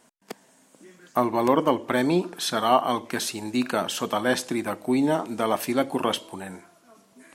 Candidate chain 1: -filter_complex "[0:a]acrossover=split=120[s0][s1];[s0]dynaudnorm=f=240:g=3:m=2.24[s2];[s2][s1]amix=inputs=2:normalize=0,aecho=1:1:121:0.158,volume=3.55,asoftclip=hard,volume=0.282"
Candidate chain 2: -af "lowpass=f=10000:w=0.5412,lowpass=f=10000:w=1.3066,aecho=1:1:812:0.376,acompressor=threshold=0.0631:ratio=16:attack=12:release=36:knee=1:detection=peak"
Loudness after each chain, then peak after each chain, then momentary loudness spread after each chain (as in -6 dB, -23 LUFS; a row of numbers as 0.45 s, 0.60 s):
-24.5 LUFS, -27.5 LUFS; -11.0 dBFS, -9.5 dBFS; 16 LU, 9 LU